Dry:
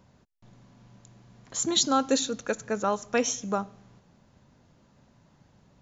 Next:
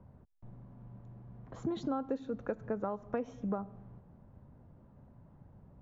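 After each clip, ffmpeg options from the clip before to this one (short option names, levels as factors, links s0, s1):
-filter_complex "[0:a]acrossover=split=120[s0][s1];[s0]acontrast=90[s2];[s2][s1]amix=inputs=2:normalize=0,lowpass=1000,acompressor=threshold=0.0282:ratio=10"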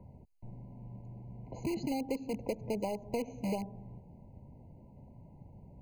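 -filter_complex "[0:a]asplit=2[s0][s1];[s1]aeval=exprs='(mod(37.6*val(0)+1,2)-1)/37.6':c=same,volume=0.562[s2];[s0][s2]amix=inputs=2:normalize=0,afftfilt=real='re*eq(mod(floor(b*sr/1024/1000),2),0)':imag='im*eq(mod(floor(b*sr/1024/1000),2),0)':win_size=1024:overlap=0.75"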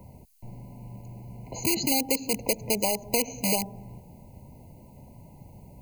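-af "crystalizer=i=9.5:c=0,volume=1.68"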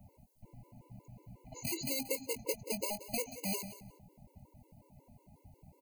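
-filter_complex "[0:a]asplit=2[s0][s1];[s1]adelay=22,volume=0.282[s2];[s0][s2]amix=inputs=2:normalize=0,aecho=1:1:181|362:0.188|0.0301,afftfilt=real='re*gt(sin(2*PI*5.5*pts/sr)*(1-2*mod(floor(b*sr/1024/290),2)),0)':imag='im*gt(sin(2*PI*5.5*pts/sr)*(1-2*mod(floor(b*sr/1024/290),2)),0)':win_size=1024:overlap=0.75,volume=0.398"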